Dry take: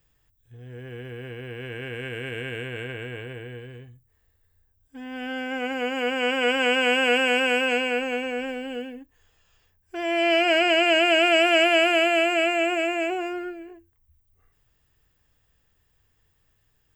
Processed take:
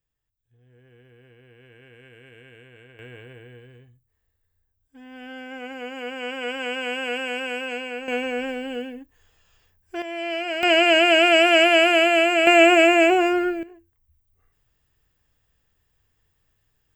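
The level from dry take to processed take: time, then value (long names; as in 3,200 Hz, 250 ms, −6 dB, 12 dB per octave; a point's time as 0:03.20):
−16 dB
from 0:02.99 −7 dB
from 0:08.08 +2 dB
from 0:10.02 −7.5 dB
from 0:10.63 +3 dB
from 0:12.47 +10 dB
from 0:13.63 −2 dB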